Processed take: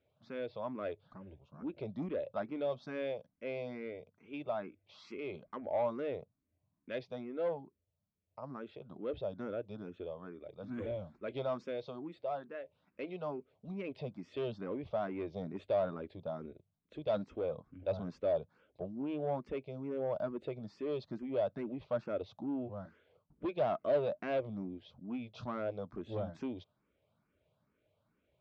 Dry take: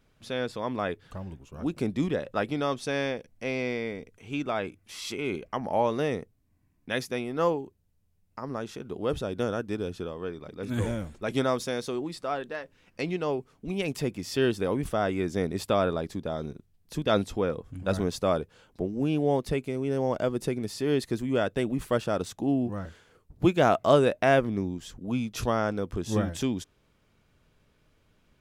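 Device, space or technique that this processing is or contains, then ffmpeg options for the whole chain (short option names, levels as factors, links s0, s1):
barber-pole phaser into a guitar amplifier: -filter_complex "[0:a]asplit=2[s0][s1];[s1]afreqshift=2.3[s2];[s0][s2]amix=inputs=2:normalize=1,asoftclip=type=tanh:threshold=0.0668,highpass=83,equalizer=f=600:t=q:w=4:g=9,equalizer=f=1800:t=q:w=4:g=-6,equalizer=f=2900:t=q:w=4:g=-4,lowpass=f=3700:w=0.5412,lowpass=f=3700:w=1.3066,volume=0.398"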